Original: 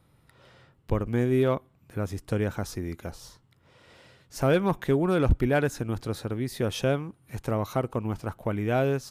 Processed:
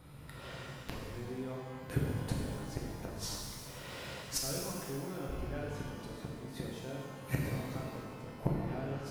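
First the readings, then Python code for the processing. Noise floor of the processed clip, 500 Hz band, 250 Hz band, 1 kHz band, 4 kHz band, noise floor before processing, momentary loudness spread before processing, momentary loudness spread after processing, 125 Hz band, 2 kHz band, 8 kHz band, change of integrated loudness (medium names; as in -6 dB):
-48 dBFS, -15.0 dB, -12.0 dB, -12.0 dB, -3.5 dB, -63 dBFS, 12 LU, 9 LU, -9.5 dB, -11.0 dB, +1.0 dB, -12.0 dB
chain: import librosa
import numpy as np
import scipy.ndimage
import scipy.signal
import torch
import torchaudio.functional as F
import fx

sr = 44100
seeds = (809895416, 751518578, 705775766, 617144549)

y = fx.gate_flip(x, sr, shuts_db=-26.0, range_db=-28)
y = fx.rev_shimmer(y, sr, seeds[0], rt60_s=1.8, semitones=12, shimmer_db=-8, drr_db=-3.0)
y = F.gain(torch.from_numpy(y), 5.5).numpy()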